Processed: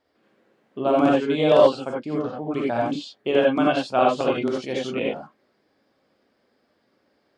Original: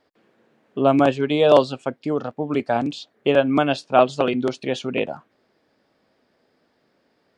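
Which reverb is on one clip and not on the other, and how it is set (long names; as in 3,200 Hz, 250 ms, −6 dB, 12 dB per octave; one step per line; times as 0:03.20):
reverb whose tail is shaped and stops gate 110 ms rising, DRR −3 dB
level −6.5 dB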